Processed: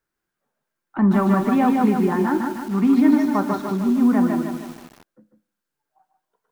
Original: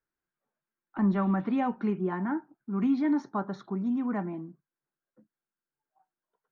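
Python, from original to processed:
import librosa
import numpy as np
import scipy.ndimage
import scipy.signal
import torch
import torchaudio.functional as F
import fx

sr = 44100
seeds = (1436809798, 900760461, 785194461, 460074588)

y = x + 10.0 ** (-7.0 / 20.0) * np.pad(x, (int(146 * sr / 1000.0), 0))[:len(x)]
y = fx.rev_schroeder(y, sr, rt60_s=0.62, comb_ms=26, drr_db=16.5)
y = fx.echo_crushed(y, sr, ms=154, feedback_pct=55, bits=8, wet_db=-4.5)
y = F.gain(torch.from_numpy(y), 8.0).numpy()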